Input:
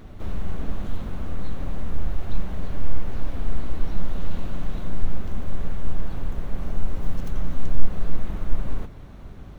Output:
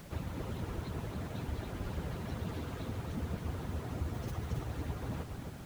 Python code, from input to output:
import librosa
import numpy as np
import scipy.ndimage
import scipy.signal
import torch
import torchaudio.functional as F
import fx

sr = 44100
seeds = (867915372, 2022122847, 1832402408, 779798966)

y = fx.hpss_only(x, sr, part='percussive')
y = fx.echo_feedback(y, sr, ms=466, feedback_pct=40, wet_db=-6)
y = fx.dmg_noise_colour(y, sr, seeds[0], colour='pink', level_db=-56.0)
y = fx.stretch_vocoder_free(y, sr, factor=0.59)
y = y * 10.0 ** (3.0 / 20.0)